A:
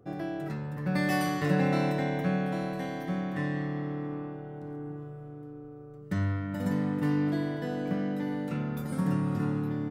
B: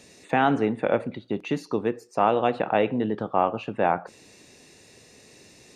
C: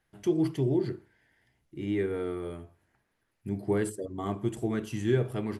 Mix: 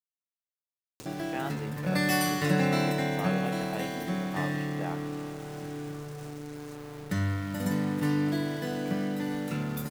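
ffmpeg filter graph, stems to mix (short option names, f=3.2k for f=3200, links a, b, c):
-filter_complex "[0:a]adelay=1000,volume=0dB[a];[1:a]adelay=1000,volume=-17dB[b];[a][b]amix=inputs=2:normalize=0,highshelf=f=2.9k:g=11,acompressor=mode=upward:threshold=-33dB:ratio=2.5,aeval=exprs='val(0)*gte(abs(val(0)),0.00841)':c=same"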